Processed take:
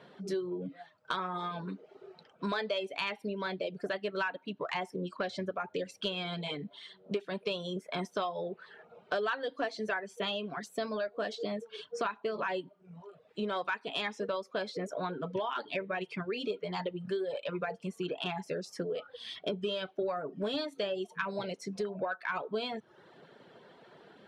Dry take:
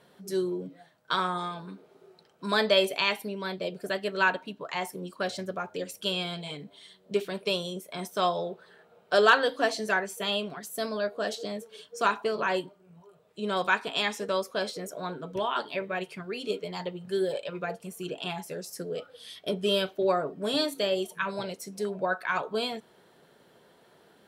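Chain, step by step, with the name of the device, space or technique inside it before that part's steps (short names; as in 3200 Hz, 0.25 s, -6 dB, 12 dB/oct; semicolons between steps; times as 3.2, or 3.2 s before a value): AM radio (BPF 100–3800 Hz; compressor 5:1, threshold -36 dBFS, peak gain reduction 18 dB; soft clip -24.5 dBFS, distortion -28 dB); reverb removal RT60 0.64 s; gain +5 dB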